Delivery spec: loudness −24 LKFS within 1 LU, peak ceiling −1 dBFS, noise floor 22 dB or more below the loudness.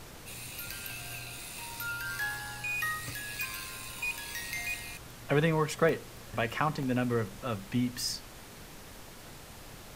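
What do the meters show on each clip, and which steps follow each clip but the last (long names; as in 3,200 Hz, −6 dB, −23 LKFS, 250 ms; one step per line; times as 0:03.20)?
number of dropouts 3; longest dropout 1.1 ms; background noise floor −49 dBFS; target noise floor −56 dBFS; integrated loudness −33.5 LKFS; sample peak −13.5 dBFS; target loudness −24.0 LKFS
→ repair the gap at 0:00.79/0:05.89/0:06.83, 1.1 ms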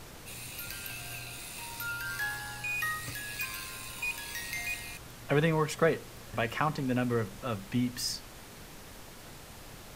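number of dropouts 0; background noise floor −49 dBFS; target noise floor −56 dBFS
→ noise reduction from a noise print 7 dB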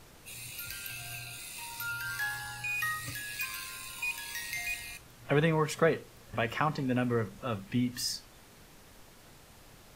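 background noise floor −56 dBFS; integrated loudness −33.5 LKFS; sample peak −13.5 dBFS; target loudness −24.0 LKFS
→ level +9.5 dB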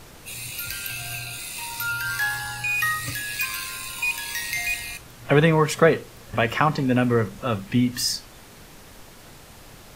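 integrated loudness −24.0 LKFS; sample peak −4.0 dBFS; background noise floor −46 dBFS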